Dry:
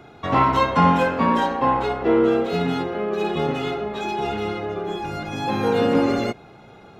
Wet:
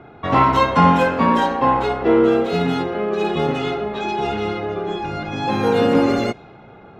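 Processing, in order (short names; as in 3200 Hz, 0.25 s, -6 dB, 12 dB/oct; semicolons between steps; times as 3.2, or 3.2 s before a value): low-pass opened by the level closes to 2000 Hz, open at -17.5 dBFS; gain +3 dB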